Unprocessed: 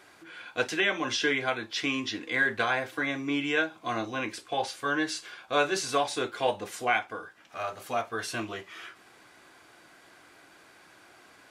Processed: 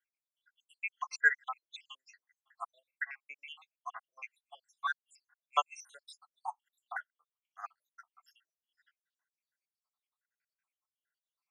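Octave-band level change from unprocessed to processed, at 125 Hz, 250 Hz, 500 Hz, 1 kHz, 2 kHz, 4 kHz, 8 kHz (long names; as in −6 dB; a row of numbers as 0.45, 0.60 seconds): below −40 dB, below −40 dB, −23.0 dB, −8.5 dB, −7.0 dB, −16.5 dB, −15.0 dB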